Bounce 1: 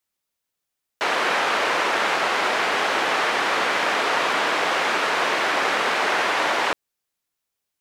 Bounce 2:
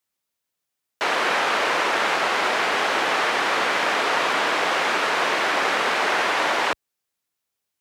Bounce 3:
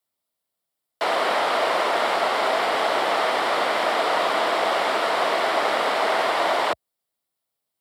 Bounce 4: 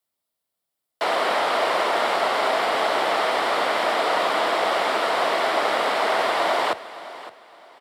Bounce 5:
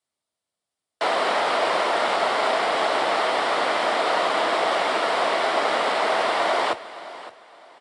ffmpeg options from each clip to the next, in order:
ffmpeg -i in.wav -af "highpass=55" out.wav
ffmpeg -i in.wav -af "equalizer=frequency=630:width_type=o:width=0.33:gain=7,equalizer=frequency=1600:width_type=o:width=0.33:gain=-6,equalizer=frequency=2500:width_type=o:width=0.33:gain=-7,equalizer=frequency=6300:width_type=o:width=0.33:gain=-10,afreqshift=26" out.wav
ffmpeg -i in.wav -af "aecho=1:1:563|1126|1689:0.158|0.046|0.0133" out.wav
ffmpeg -i in.wav -ar 22050 -c:a aac -b:a 48k out.aac

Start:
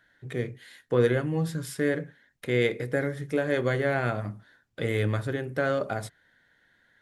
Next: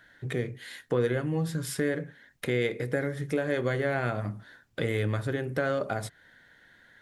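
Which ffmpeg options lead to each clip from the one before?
ffmpeg -i in.wav -af "acompressor=threshold=-39dB:ratio=2,volume=7dB" out.wav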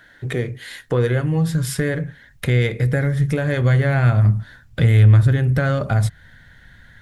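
ffmpeg -i in.wav -af "asubboost=boost=11.5:cutoff=110,asoftclip=type=tanh:threshold=-11.5dB,volume=8dB" out.wav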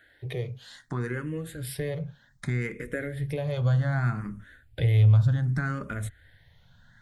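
ffmpeg -i in.wav -filter_complex "[0:a]asplit=2[link_01][link_02];[link_02]afreqshift=0.65[link_03];[link_01][link_03]amix=inputs=2:normalize=1,volume=-7dB" out.wav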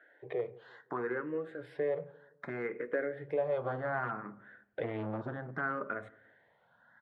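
ffmpeg -i in.wav -filter_complex "[0:a]aeval=exprs='clip(val(0),-1,0.075)':channel_layout=same,asuperpass=centerf=740:order=4:qfactor=0.69,asplit=2[link_01][link_02];[link_02]adelay=172,lowpass=frequency=880:poles=1,volume=-20.5dB,asplit=2[link_03][link_04];[link_04]adelay=172,lowpass=frequency=880:poles=1,volume=0.42,asplit=2[link_05][link_06];[link_06]adelay=172,lowpass=frequency=880:poles=1,volume=0.42[link_07];[link_01][link_03][link_05][link_07]amix=inputs=4:normalize=0,volume=2.5dB" out.wav

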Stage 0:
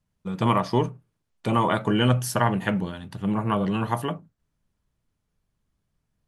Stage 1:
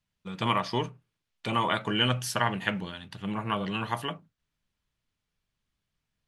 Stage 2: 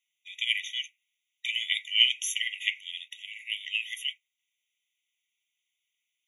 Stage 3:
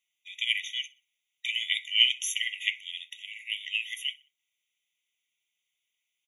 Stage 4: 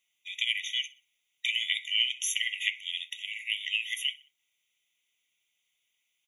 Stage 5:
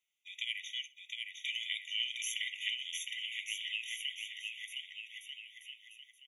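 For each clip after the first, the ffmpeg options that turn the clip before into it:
ffmpeg -i in.wav -af "equalizer=frequency=3100:width_type=o:width=2.5:gain=12,volume=-8.5dB" out.wav
ffmpeg -i in.wav -af "afftfilt=real='re*eq(mod(floor(b*sr/1024/1900),2),1)':imag='im*eq(mod(floor(b*sr/1024/1900),2),1)':win_size=1024:overlap=0.75,volume=7dB" out.wav
ffmpeg -i in.wav -af "aecho=1:1:62|124|186:0.0708|0.0283|0.0113" out.wav
ffmpeg -i in.wav -af "acompressor=threshold=-31dB:ratio=3,volume=4.5dB" out.wav
ffmpeg -i in.wav -af "aecho=1:1:710|1242|1642|1941|2166:0.631|0.398|0.251|0.158|0.1,volume=-9dB" out.wav

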